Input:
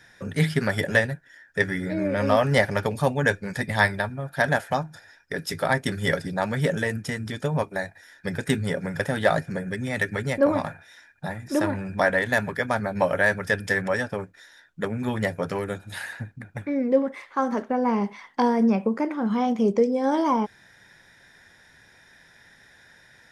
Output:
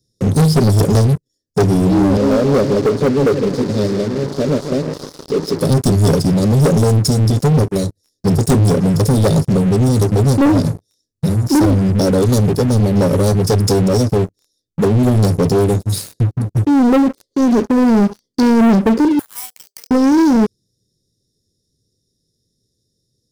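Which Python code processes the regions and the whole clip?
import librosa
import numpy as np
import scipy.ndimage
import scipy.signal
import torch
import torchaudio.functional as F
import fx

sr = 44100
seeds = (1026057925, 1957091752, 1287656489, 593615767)

y = fx.chain(x, sr, fx.delta_mod(bps=64000, step_db=-28.5),
    fx.bandpass_edges(low_hz=280.0, high_hz=2300.0),
    fx.echo_feedback(ms=157, feedback_pct=54, wet_db=-11.0), at=(2.17, 5.61))
y = fx.chain(y, sr, fx.steep_highpass(hz=860.0, slope=48),
    fx.resample_bad(factor=4, down='filtered', up='hold'), at=(19.19, 19.91))
y = scipy.signal.sosfilt(scipy.signal.ellip(3, 1.0, 40, [440.0, 4600.0], 'bandstop', fs=sr, output='sos'), y)
y = fx.peak_eq(y, sr, hz=110.0, db=5.5, octaves=0.4)
y = fx.leveller(y, sr, passes=5)
y = F.gain(torch.from_numpy(y), 2.5).numpy()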